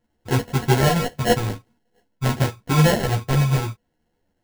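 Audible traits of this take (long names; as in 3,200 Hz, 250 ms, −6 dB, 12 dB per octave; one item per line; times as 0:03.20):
a buzz of ramps at a fixed pitch in blocks of 8 samples
phaser sweep stages 2, 0.49 Hz, lowest notch 550–2,200 Hz
aliases and images of a low sample rate 1,200 Hz, jitter 0%
a shimmering, thickened sound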